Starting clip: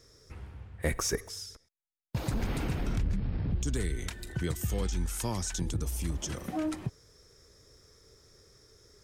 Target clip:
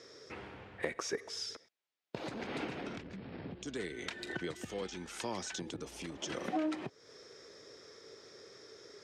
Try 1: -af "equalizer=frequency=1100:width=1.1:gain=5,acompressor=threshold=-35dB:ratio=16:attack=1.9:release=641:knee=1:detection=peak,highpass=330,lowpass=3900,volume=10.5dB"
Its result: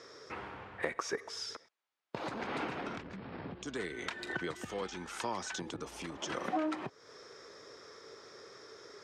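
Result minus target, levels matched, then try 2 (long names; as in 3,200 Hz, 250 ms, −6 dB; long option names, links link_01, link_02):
1,000 Hz band +3.5 dB
-af "equalizer=frequency=1100:width=1.1:gain=-3.5,acompressor=threshold=-35dB:ratio=16:attack=1.9:release=641:knee=1:detection=peak,highpass=330,lowpass=3900,volume=10.5dB"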